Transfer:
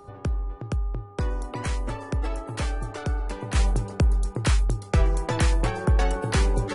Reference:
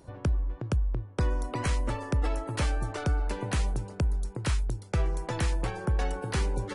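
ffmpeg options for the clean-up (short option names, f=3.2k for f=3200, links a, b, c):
-filter_complex "[0:a]bandreject=f=404.3:t=h:w=4,bandreject=f=808.6:t=h:w=4,bandreject=f=1.2129k:t=h:w=4,asplit=3[a][b][c];[a]afade=t=out:st=4.96:d=0.02[d];[b]highpass=f=140:w=0.5412,highpass=f=140:w=1.3066,afade=t=in:st=4.96:d=0.02,afade=t=out:st=5.08:d=0.02[e];[c]afade=t=in:st=5.08:d=0.02[f];[d][e][f]amix=inputs=3:normalize=0,asetnsamples=n=441:p=0,asendcmd='3.55 volume volume -6.5dB',volume=0dB"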